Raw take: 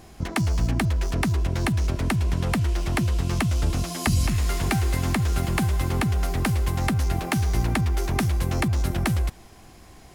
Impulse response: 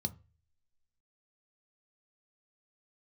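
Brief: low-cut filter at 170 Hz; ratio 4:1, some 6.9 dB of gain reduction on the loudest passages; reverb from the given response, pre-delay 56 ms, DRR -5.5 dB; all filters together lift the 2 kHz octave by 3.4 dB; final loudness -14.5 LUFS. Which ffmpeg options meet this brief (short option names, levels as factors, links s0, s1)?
-filter_complex "[0:a]highpass=170,equalizer=f=2000:t=o:g=4,acompressor=threshold=0.0355:ratio=4,asplit=2[s0][s1];[1:a]atrim=start_sample=2205,adelay=56[s2];[s1][s2]afir=irnorm=-1:irlink=0,volume=1.88[s3];[s0][s3]amix=inputs=2:normalize=0,volume=1.88"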